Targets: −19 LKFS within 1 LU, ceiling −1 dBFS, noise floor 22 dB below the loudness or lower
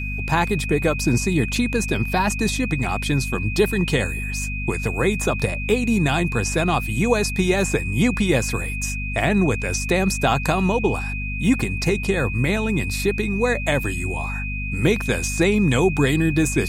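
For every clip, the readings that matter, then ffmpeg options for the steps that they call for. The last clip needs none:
mains hum 50 Hz; hum harmonics up to 250 Hz; level of the hum −25 dBFS; interfering tone 2,500 Hz; level of the tone −29 dBFS; integrated loudness −21.0 LKFS; sample peak −5.0 dBFS; target loudness −19.0 LKFS
→ -af "bandreject=frequency=50:width_type=h:width=6,bandreject=frequency=100:width_type=h:width=6,bandreject=frequency=150:width_type=h:width=6,bandreject=frequency=200:width_type=h:width=6,bandreject=frequency=250:width_type=h:width=6"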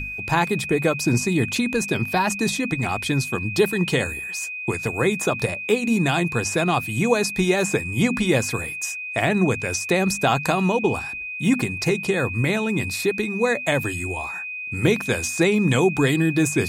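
mains hum none found; interfering tone 2,500 Hz; level of the tone −29 dBFS
→ -af "bandreject=frequency=2500:width=30"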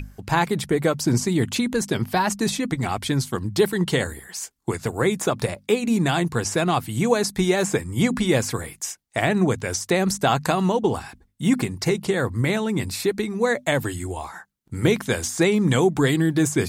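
interfering tone none found; integrated loudness −22.5 LKFS; sample peak −6.0 dBFS; target loudness −19.0 LKFS
→ -af "volume=3.5dB"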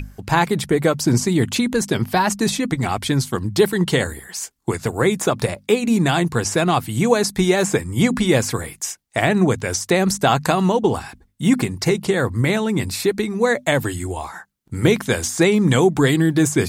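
integrated loudness −19.0 LKFS; sample peak −2.5 dBFS; background noise floor −55 dBFS

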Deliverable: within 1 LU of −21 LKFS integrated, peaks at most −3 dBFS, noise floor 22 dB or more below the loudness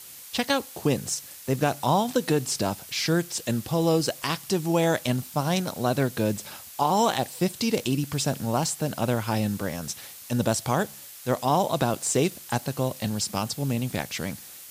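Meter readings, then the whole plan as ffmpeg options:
background noise floor −44 dBFS; target noise floor −49 dBFS; integrated loudness −26.5 LKFS; sample peak −10.5 dBFS; target loudness −21.0 LKFS
→ -af "afftdn=noise_reduction=6:noise_floor=-44"
-af "volume=5.5dB"

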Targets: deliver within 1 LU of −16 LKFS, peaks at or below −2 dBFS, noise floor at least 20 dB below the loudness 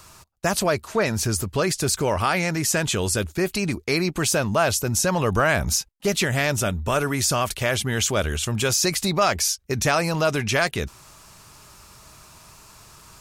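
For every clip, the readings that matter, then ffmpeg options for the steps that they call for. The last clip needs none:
integrated loudness −22.5 LKFS; sample peak −7.5 dBFS; target loudness −16.0 LKFS
→ -af "volume=6.5dB,alimiter=limit=-2dB:level=0:latency=1"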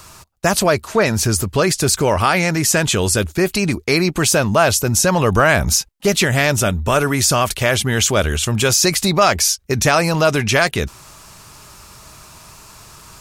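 integrated loudness −16.0 LKFS; sample peak −2.0 dBFS; background noise floor −44 dBFS

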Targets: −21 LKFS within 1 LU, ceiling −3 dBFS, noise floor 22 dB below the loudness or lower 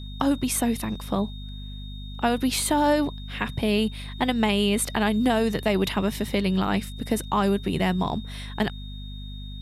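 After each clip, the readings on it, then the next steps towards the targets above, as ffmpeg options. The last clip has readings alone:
mains hum 50 Hz; hum harmonics up to 250 Hz; level of the hum −34 dBFS; interfering tone 3,700 Hz; level of the tone −44 dBFS; integrated loudness −25.0 LKFS; sample peak −9.0 dBFS; target loudness −21.0 LKFS
→ -af "bandreject=frequency=50:width_type=h:width=4,bandreject=frequency=100:width_type=h:width=4,bandreject=frequency=150:width_type=h:width=4,bandreject=frequency=200:width_type=h:width=4,bandreject=frequency=250:width_type=h:width=4"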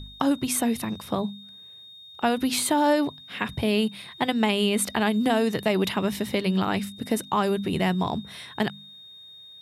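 mains hum none found; interfering tone 3,700 Hz; level of the tone −44 dBFS
→ -af "bandreject=frequency=3700:width=30"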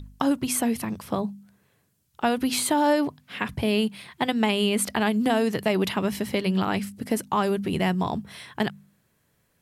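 interfering tone none found; integrated loudness −25.5 LKFS; sample peak −9.0 dBFS; target loudness −21.0 LKFS
→ -af "volume=4.5dB"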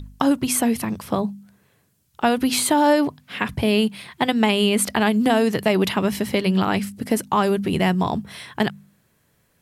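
integrated loudness −21.0 LKFS; sample peak −4.5 dBFS; background noise floor −64 dBFS

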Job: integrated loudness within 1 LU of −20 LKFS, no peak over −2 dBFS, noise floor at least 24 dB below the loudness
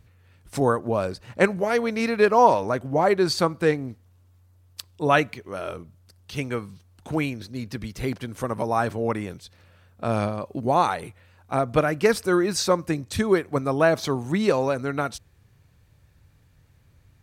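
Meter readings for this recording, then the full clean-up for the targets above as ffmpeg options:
integrated loudness −24.0 LKFS; sample peak −4.5 dBFS; target loudness −20.0 LKFS
→ -af "volume=4dB,alimiter=limit=-2dB:level=0:latency=1"

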